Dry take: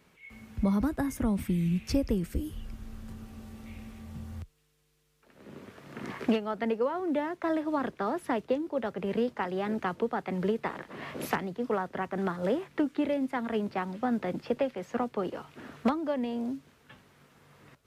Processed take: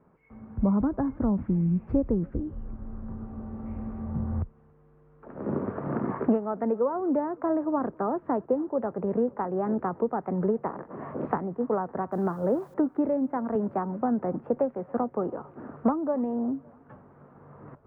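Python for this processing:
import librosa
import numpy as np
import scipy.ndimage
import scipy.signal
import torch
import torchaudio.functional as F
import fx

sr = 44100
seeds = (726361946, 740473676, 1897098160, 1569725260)

y = fx.recorder_agc(x, sr, target_db=-21.5, rise_db_per_s=5.1, max_gain_db=30)
y = scipy.signal.sosfilt(scipy.signal.butter(4, 1200.0, 'lowpass', fs=sr, output='sos'), y)
y = fx.quant_dither(y, sr, seeds[0], bits=12, dither='triangular', at=(12.12, 12.74))
y = fx.peak_eq(y, sr, hz=62.0, db=-6.5, octaves=0.61)
y = fx.echo_thinned(y, sr, ms=280, feedback_pct=73, hz=420.0, wet_db=-24)
y = fx.band_squash(y, sr, depth_pct=40, at=(13.55, 14.21))
y = y * librosa.db_to_amplitude(3.0)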